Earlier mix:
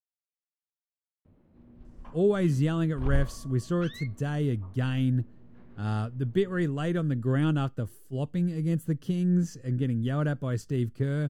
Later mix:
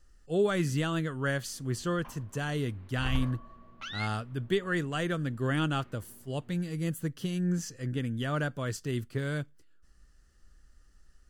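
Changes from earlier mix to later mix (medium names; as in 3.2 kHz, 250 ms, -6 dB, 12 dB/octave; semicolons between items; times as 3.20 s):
speech: entry -1.85 s; master: add tilt shelf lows -6 dB, about 660 Hz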